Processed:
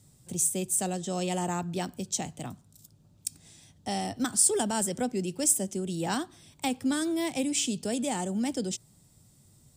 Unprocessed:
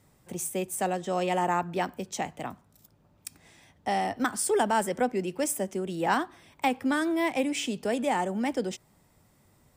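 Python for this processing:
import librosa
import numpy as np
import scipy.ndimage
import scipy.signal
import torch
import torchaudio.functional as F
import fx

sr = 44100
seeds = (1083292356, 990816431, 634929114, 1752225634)

y = fx.graphic_eq(x, sr, hz=(125, 500, 1000, 2000, 4000, 8000), db=(7, -4, -7, -8, 4, 9))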